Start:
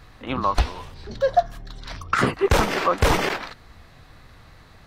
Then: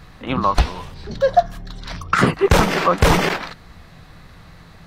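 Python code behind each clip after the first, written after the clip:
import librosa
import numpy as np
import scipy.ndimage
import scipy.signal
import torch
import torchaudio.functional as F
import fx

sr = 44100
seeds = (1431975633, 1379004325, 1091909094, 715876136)

y = fx.peak_eq(x, sr, hz=170.0, db=10.5, octaves=0.29)
y = y * 10.0 ** (4.0 / 20.0)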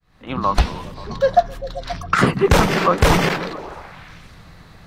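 y = fx.fade_in_head(x, sr, length_s=0.55)
y = fx.echo_stepped(y, sr, ms=132, hz=160.0, octaves=0.7, feedback_pct=70, wet_db=-6.5)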